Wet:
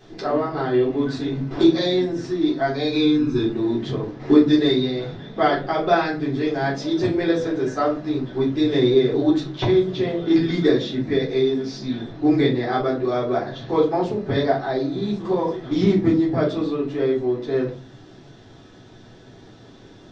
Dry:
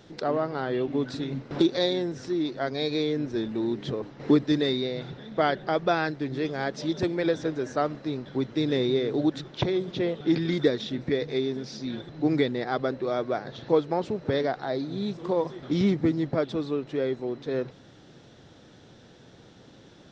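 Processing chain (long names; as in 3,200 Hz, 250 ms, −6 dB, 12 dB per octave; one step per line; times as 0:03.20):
0:02.91–0:03.43: comb filter 0.8 ms, depth 80%
rectangular room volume 170 cubic metres, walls furnished, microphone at 3.7 metres
level −3.5 dB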